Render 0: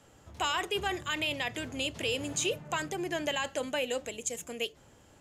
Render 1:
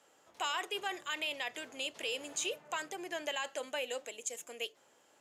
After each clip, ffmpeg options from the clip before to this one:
ffmpeg -i in.wav -af "highpass=440,volume=-4.5dB" out.wav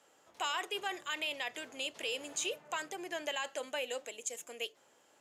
ffmpeg -i in.wav -af anull out.wav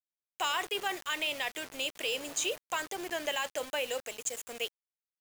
ffmpeg -i in.wav -af "acrusher=bits=7:mix=0:aa=0.000001,volume=4dB" out.wav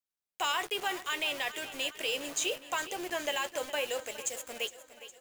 ffmpeg -i in.wav -filter_complex "[0:a]asplit=2[link_01][link_02];[link_02]adelay=14,volume=-13dB[link_03];[link_01][link_03]amix=inputs=2:normalize=0,aecho=1:1:411|822|1233|1644|2055|2466:0.188|0.105|0.0591|0.0331|0.0185|0.0104" out.wav

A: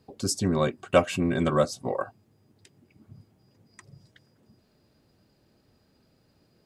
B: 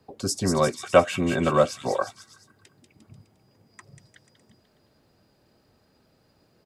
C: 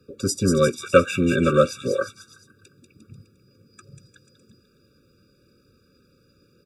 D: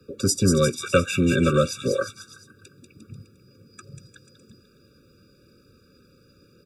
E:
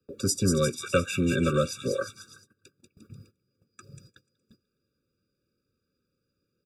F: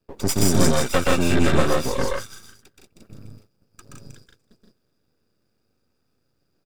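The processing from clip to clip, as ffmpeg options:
ffmpeg -i in.wav -filter_complex "[0:a]acrossover=split=260|450|1900[link_01][link_02][link_03][link_04];[link_03]acontrast=34[link_05];[link_04]aecho=1:1:190|351.5|488.8|605.5|704.6:0.631|0.398|0.251|0.158|0.1[link_06];[link_01][link_02][link_05][link_06]amix=inputs=4:normalize=0" out.wav
ffmpeg -i in.wav -af "afftfilt=real='re*eq(mod(floor(b*sr/1024/560),2),0)':imag='im*eq(mod(floor(b*sr/1024/560),2),0)':win_size=1024:overlap=0.75,volume=4.5dB" out.wav
ffmpeg -i in.wav -filter_complex "[0:a]acrossover=split=170|3000[link_01][link_02][link_03];[link_02]acompressor=threshold=-27dB:ratio=2[link_04];[link_01][link_04][link_03]amix=inputs=3:normalize=0,volume=3.5dB" out.wav
ffmpeg -i in.wav -af "agate=range=-18dB:threshold=-48dB:ratio=16:detection=peak,highshelf=frequency=10000:gain=3.5,volume=-5dB" out.wav
ffmpeg -i in.wav -af "aeval=exprs='max(val(0),0)':channel_layout=same,aecho=1:1:125.4|163.3:0.891|0.794,volume=6.5dB" out.wav

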